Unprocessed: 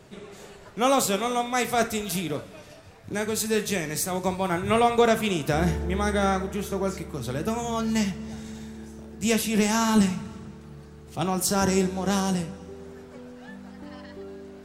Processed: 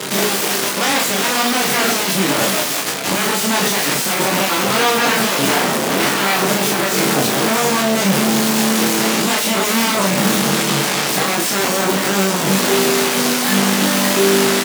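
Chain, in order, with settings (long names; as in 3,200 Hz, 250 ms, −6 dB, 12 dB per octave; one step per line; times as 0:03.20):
running median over 3 samples
in parallel at −3 dB: fuzz pedal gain 47 dB, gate −47 dBFS
on the sum: brickwall limiter −14 dBFS, peak gain reduction 9 dB
sine wavefolder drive 16 dB, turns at −14 dBFS
high-pass filter 160 Hz 24 dB per octave
on a send: ambience of single reflections 21 ms −4.5 dB, 36 ms −4.5 dB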